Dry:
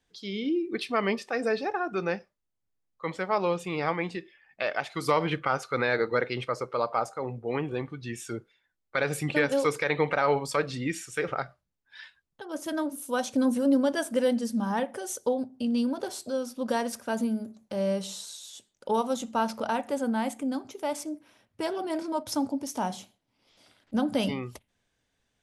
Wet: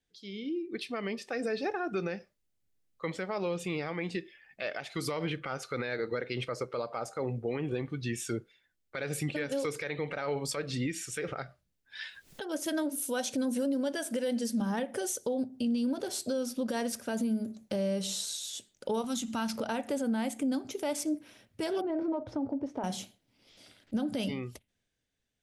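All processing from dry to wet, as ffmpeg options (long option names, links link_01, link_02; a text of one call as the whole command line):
ffmpeg -i in.wav -filter_complex "[0:a]asettb=1/sr,asplit=3[link_01][link_02][link_03];[link_01]atrim=end=12.014[link_04];[link_02]atrim=start=12.01:end=14.61,asetpts=PTS-STARTPTS,afade=type=in:duration=0.004:curve=qsin,afade=type=out:start_time=2.596:duration=0.004:curve=qsin,lowshelf=frequency=180:gain=-12,bandreject=frequency=1200:width=14,acompressor=mode=upward:threshold=-37dB:ratio=2.5:attack=3.2:release=140:knee=2.83:detection=peak[link_05];[link_03]atrim=start=14.606[link_06];[link_04][link_05]acrossfade=duration=0.004:curve1=hsin:curve2=qsin[link_07];[link_07][link_06]acrossfade=duration=0.004:curve1=qsin:curve2=hsin,asettb=1/sr,asplit=3[link_08][link_09][link_10];[link_08]atrim=end=19.044[link_11];[link_09]atrim=start=19.04:end=19.56,asetpts=PTS-STARTPTS,afade=type=in:duration=0.004:curve=qsin,afade=type=out:start_time=0.516:duration=0.004:curve=qsin,equalizer=frequency=520:width=1.7:gain=-15,acompressor=mode=upward:threshold=-33dB:ratio=2.5:attack=3.2:release=140:knee=2.83:detection=peak[link_12];[link_10]atrim=start=19.556[link_13];[link_11][link_12]acrossfade=duration=0.004:curve1=hsin:curve2=qsin[link_14];[link_14][link_13]acrossfade=duration=0.004:curve1=qsin:curve2=hsin,asettb=1/sr,asplit=3[link_15][link_16][link_17];[link_15]atrim=end=21.814[link_18];[link_16]atrim=start=21.81:end=22.84,asetpts=PTS-STARTPTS,afade=type=in:duration=0.004:curve=qsin,afade=type=out:start_time=1.026:duration=0.004:curve=qsin,lowpass=1100,equalizer=frequency=210:width=3.9:gain=-14.5,acompressor=threshold=-31dB:ratio=6:attack=3.2:release=140:knee=1:detection=peak[link_19];[link_17]atrim=start=22.836[link_20];[link_18][link_19]acrossfade=duration=0.004:curve1=hsin:curve2=qsin[link_21];[link_21][link_20]acrossfade=duration=0.004:curve1=qsin:curve2=hsin,equalizer=frequency=990:width=1.4:gain=-8,dynaudnorm=framelen=120:gausssize=21:maxgain=13.5dB,alimiter=limit=-16dB:level=0:latency=1:release=186,volume=-7.5dB" out.wav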